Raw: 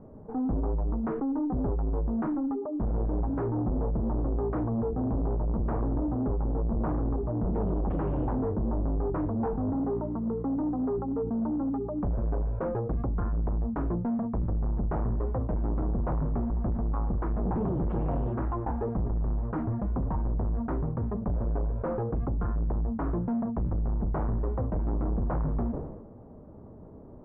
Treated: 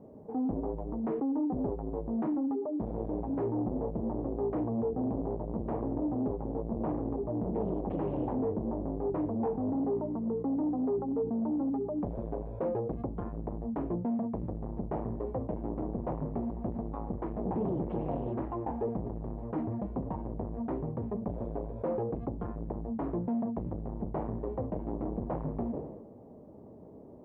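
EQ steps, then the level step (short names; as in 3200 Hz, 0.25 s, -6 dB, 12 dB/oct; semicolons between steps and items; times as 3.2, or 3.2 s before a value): HPF 340 Hz 6 dB/oct; bell 1400 Hz -14 dB 1 oct; +3.0 dB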